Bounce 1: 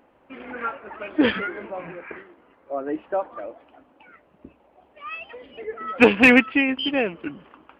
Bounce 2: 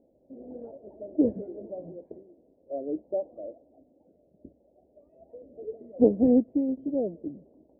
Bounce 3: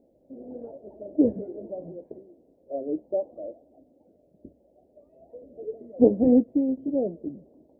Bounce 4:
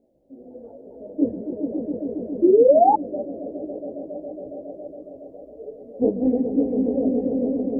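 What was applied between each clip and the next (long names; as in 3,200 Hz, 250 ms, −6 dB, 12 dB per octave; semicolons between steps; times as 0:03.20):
elliptic low-pass filter 630 Hz, stop band 50 dB; level −3.5 dB
flanger 1.1 Hz, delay 4.5 ms, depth 4.3 ms, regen −76%; level +6.5 dB
echo that builds up and dies away 138 ms, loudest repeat 5, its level −7 dB; sound drawn into the spectrogram rise, 0:02.42–0:02.94, 330–880 Hz −12 dBFS; multi-voice chorus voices 4, 0.79 Hz, delay 18 ms, depth 4 ms; level +1.5 dB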